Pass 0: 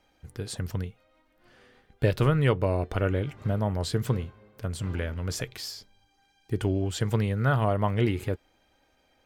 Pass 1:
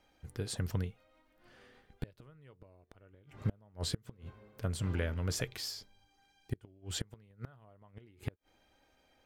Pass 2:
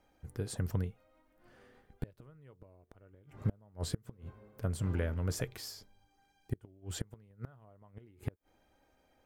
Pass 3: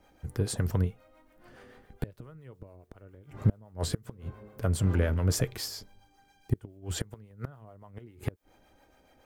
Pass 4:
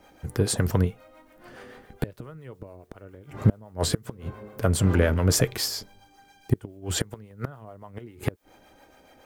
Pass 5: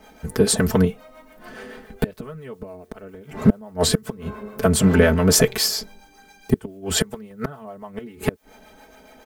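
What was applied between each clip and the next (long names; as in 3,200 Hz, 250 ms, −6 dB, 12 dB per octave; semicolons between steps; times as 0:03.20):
gate with flip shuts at −19 dBFS, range −32 dB; level −3 dB
parametric band 3,600 Hz −8 dB 2 octaves; level +1 dB
two-band tremolo in antiphase 7.2 Hz, depth 50%, crossover 430 Hz; in parallel at −10 dB: hard clipping −36 dBFS, distortion −7 dB; on the sum: level +8 dB
low-shelf EQ 110 Hz −8.5 dB; level +8.5 dB
comb filter 4.6 ms, depth 93%; level +4.5 dB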